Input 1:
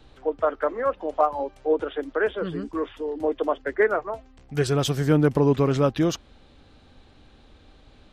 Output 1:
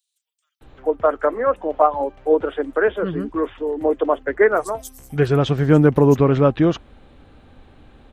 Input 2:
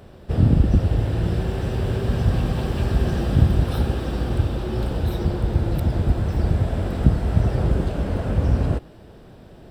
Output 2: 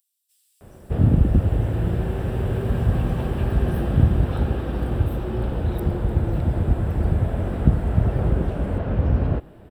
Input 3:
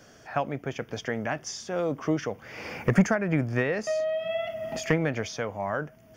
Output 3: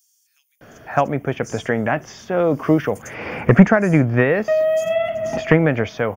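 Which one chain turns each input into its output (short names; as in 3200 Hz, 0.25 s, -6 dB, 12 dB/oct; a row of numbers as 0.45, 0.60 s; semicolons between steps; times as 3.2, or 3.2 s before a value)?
bell 5000 Hz -10.5 dB 1.2 oct; bands offset in time highs, lows 0.61 s, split 5600 Hz; normalise peaks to -1.5 dBFS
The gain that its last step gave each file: +6.0, -0.5, +10.5 dB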